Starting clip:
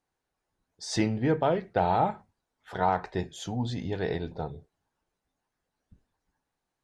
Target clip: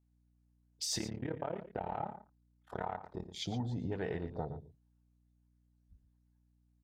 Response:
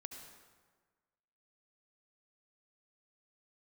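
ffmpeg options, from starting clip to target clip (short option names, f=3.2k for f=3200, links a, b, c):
-filter_complex "[0:a]aemphasis=mode=production:type=cd,afwtdn=0.01,acompressor=threshold=-37dB:ratio=3,asettb=1/sr,asplit=3[a][b][c];[a]atrim=end=0.984[d];[b]atrim=start=0.98:end=3.3,asetpts=PTS-STARTPTS,afade=t=in:d=0.004:c=qsin,afade=t=out:st=2.316:d=0.004:c=qsin,tremolo=f=36:d=0.947[e];[c]atrim=start=3.296[f];[d][e]acrossfade=d=0.004:c1=hsin:c2=qsin[g];[g][f]acrossfade=d=0.004:c1=qsin:c2=hsin,aeval=exprs='val(0)+0.000224*(sin(2*PI*60*n/s)+sin(2*PI*2*60*n/s)/2+sin(2*PI*3*60*n/s)/3+sin(2*PI*4*60*n/s)/4+sin(2*PI*5*60*n/s)/5)':c=same,asplit=2[h][i];[i]adelay=116.6,volume=-12dB,highshelf=f=4k:g=-2.62[j];[h][j]amix=inputs=2:normalize=0,volume=1dB"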